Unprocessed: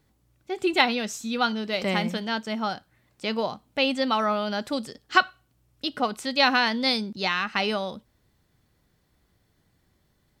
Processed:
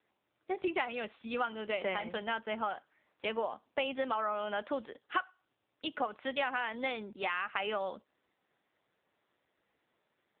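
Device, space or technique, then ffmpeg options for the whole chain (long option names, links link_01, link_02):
voicemail: -af "highpass=430,lowpass=2800,acompressor=threshold=-29dB:ratio=6" -ar 8000 -c:a libopencore_amrnb -b:a 6700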